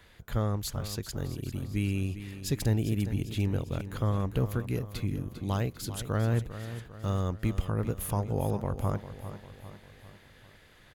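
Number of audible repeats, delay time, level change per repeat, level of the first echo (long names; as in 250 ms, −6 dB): 4, 399 ms, −6.0 dB, −12.0 dB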